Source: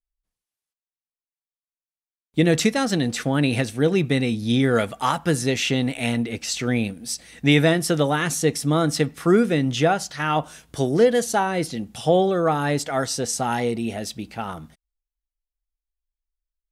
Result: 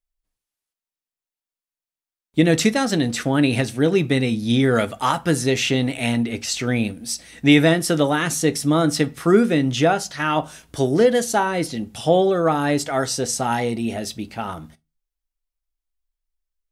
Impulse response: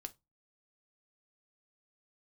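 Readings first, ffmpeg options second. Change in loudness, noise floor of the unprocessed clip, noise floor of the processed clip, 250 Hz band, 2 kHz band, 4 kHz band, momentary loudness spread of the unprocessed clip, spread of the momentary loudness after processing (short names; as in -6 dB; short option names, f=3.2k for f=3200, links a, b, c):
+2.0 dB, under -85 dBFS, under -85 dBFS, +2.5 dB, +2.0 dB, +2.0 dB, 10 LU, 9 LU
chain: -filter_complex "[0:a]asplit=2[a][b];[1:a]atrim=start_sample=2205[c];[b][c]afir=irnorm=-1:irlink=0,volume=9.5dB[d];[a][d]amix=inputs=2:normalize=0,volume=-7dB"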